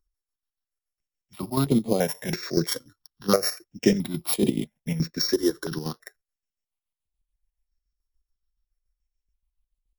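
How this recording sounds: a buzz of ramps at a fixed pitch in blocks of 8 samples; chopped level 7 Hz, depth 60%, duty 50%; notches that jump at a steady rate 3 Hz 670–5600 Hz

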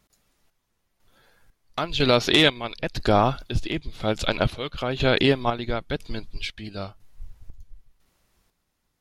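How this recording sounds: chopped level 1 Hz, depth 60%, duty 50%

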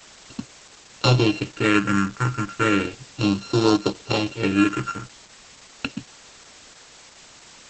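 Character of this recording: a buzz of ramps at a fixed pitch in blocks of 32 samples; phasing stages 4, 0.34 Hz, lowest notch 630–2000 Hz; a quantiser's noise floor 8-bit, dither triangular; Opus

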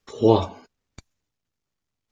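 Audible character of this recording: noise floor -83 dBFS; spectral tilt -6.0 dB/octave

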